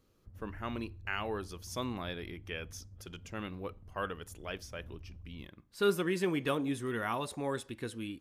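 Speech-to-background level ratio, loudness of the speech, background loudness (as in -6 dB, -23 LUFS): 16.5 dB, -37.0 LUFS, -53.5 LUFS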